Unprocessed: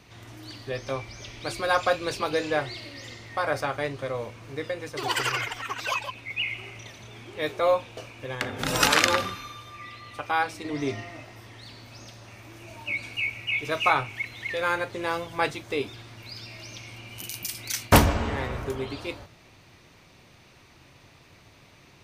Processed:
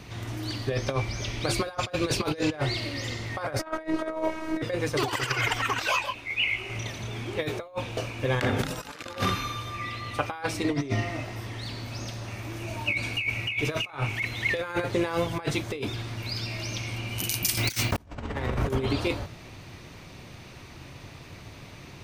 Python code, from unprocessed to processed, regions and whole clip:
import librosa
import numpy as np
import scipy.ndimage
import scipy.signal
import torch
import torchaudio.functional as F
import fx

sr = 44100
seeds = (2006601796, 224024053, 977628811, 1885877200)

y = fx.chain(x, sr, fx.band_shelf(hz=780.0, db=8.5, octaves=3.0),
    fx.robotise(hz=318.0), at=(3.59, 4.62))
y = fx.chain(y, sr, fx.peak_eq(hz=140.0, db=-11.5, octaves=1.2),
    fx.detune_double(cents=45), at=(5.79, 6.7))
y = fx.chain(y, sr, fx.over_compress(threshold_db=-27.0, ratio=-1.0),
    fx.resample_bad(factor=2, down='filtered', up='hold'), at=(17.57, 17.98))
y = fx.low_shelf(y, sr, hz=310.0, db=5.5)
y = fx.over_compress(y, sr, threshold_db=-30.0, ratio=-0.5)
y = y * 10.0 ** (2.5 / 20.0)